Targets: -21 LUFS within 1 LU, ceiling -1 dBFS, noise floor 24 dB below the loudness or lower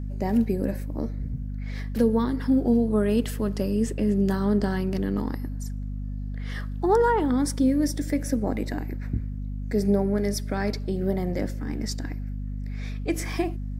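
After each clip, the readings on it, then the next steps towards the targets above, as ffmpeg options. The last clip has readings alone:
hum 50 Hz; harmonics up to 250 Hz; hum level -29 dBFS; loudness -26.5 LUFS; peak -11.0 dBFS; loudness target -21.0 LUFS
-> -af "bandreject=f=50:t=h:w=6,bandreject=f=100:t=h:w=6,bandreject=f=150:t=h:w=6,bandreject=f=200:t=h:w=6,bandreject=f=250:t=h:w=6"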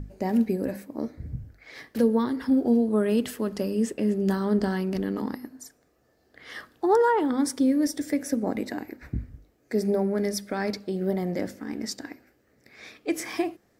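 hum none; loudness -26.5 LUFS; peak -11.5 dBFS; loudness target -21.0 LUFS
-> -af "volume=5.5dB"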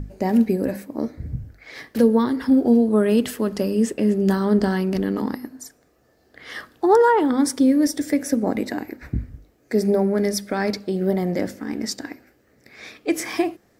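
loudness -21.0 LUFS; peak -6.0 dBFS; noise floor -61 dBFS

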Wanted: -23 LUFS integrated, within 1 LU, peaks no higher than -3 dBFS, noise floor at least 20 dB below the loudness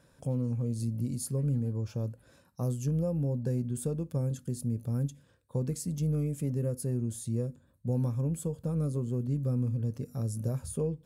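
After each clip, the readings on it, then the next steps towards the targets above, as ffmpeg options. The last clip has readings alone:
loudness -32.5 LUFS; peak -19.5 dBFS; loudness target -23.0 LUFS
-> -af "volume=9.5dB"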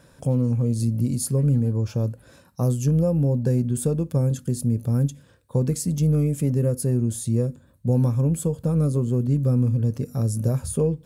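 loudness -23.0 LUFS; peak -10.0 dBFS; noise floor -55 dBFS

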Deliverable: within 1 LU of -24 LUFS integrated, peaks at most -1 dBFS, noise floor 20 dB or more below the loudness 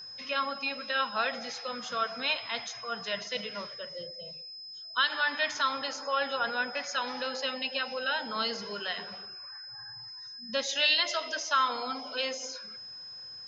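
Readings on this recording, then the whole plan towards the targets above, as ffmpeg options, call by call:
steady tone 5100 Hz; tone level -42 dBFS; loudness -31.5 LUFS; peak -14.0 dBFS; loudness target -24.0 LUFS
-> -af "bandreject=f=5.1k:w=30"
-af "volume=7.5dB"

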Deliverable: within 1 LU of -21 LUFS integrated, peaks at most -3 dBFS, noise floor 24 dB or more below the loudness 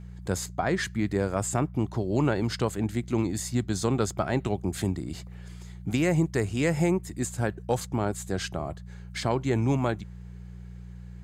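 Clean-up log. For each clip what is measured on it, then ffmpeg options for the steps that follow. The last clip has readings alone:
hum 60 Hz; harmonics up to 180 Hz; hum level -38 dBFS; loudness -28.5 LUFS; peak -12.0 dBFS; loudness target -21.0 LUFS
-> -af "bandreject=f=60:t=h:w=4,bandreject=f=120:t=h:w=4,bandreject=f=180:t=h:w=4"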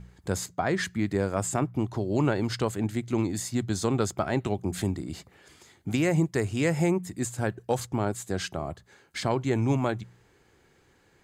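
hum none; loudness -28.5 LUFS; peak -12.5 dBFS; loudness target -21.0 LUFS
-> -af "volume=7.5dB"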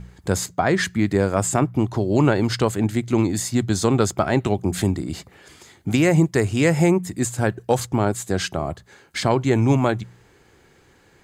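loudness -21.0 LUFS; peak -5.0 dBFS; noise floor -55 dBFS

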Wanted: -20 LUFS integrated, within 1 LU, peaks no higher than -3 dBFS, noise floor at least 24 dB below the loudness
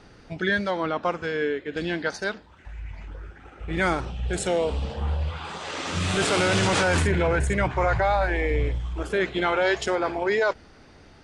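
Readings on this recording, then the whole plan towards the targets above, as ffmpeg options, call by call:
loudness -25.0 LUFS; peak -9.5 dBFS; loudness target -20.0 LUFS
-> -af "volume=5dB"

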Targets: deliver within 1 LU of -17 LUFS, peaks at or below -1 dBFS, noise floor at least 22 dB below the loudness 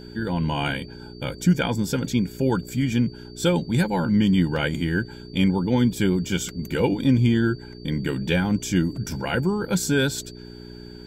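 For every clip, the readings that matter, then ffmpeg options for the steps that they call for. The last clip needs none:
hum 60 Hz; harmonics up to 420 Hz; hum level -44 dBFS; steady tone 4600 Hz; tone level -48 dBFS; loudness -23.5 LUFS; peak -8.0 dBFS; loudness target -17.0 LUFS
-> -af "bandreject=f=60:t=h:w=4,bandreject=f=120:t=h:w=4,bandreject=f=180:t=h:w=4,bandreject=f=240:t=h:w=4,bandreject=f=300:t=h:w=4,bandreject=f=360:t=h:w=4,bandreject=f=420:t=h:w=4"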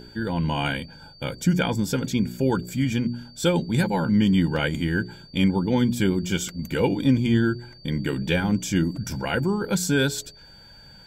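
hum none; steady tone 4600 Hz; tone level -48 dBFS
-> -af "bandreject=f=4.6k:w=30"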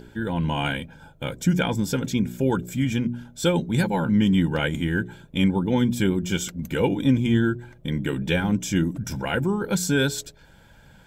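steady tone none; loudness -24.0 LUFS; peak -8.5 dBFS; loudness target -17.0 LUFS
-> -af "volume=7dB"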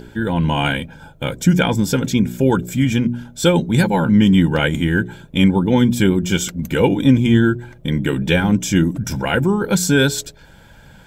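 loudness -17.0 LUFS; peak -1.5 dBFS; noise floor -45 dBFS

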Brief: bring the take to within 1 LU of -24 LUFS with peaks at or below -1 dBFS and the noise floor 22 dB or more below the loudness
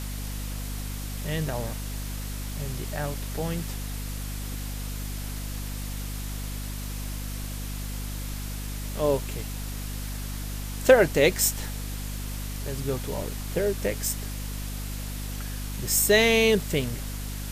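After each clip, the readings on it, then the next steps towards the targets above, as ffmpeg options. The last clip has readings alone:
hum 50 Hz; harmonics up to 250 Hz; hum level -31 dBFS; noise floor -34 dBFS; noise floor target -51 dBFS; loudness -28.5 LUFS; peak -3.5 dBFS; loudness target -24.0 LUFS
-> -af "bandreject=f=50:t=h:w=4,bandreject=f=100:t=h:w=4,bandreject=f=150:t=h:w=4,bandreject=f=200:t=h:w=4,bandreject=f=250:t=h:w=4"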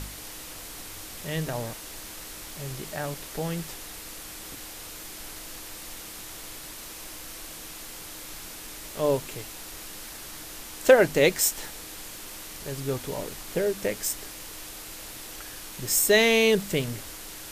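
hum none; noise floor -41 dBFS; noise floor target -51 dBFS
-> -af "afftdn=nr=10:nf=-41"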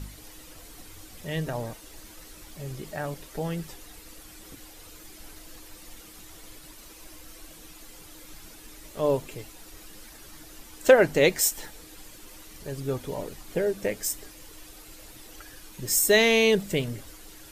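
noise floor -48 dBFS; loudness -25.5 LUFS; peak -3.5 dBFS; loudness target -24.0 LUFS
-> -af "volume=1.5dB"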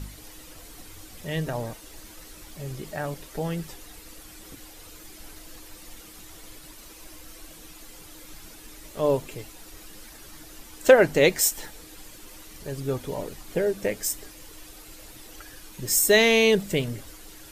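loudness -24.0 LUFS; peak -2.0 dBFS; noise floor -47 dBFS

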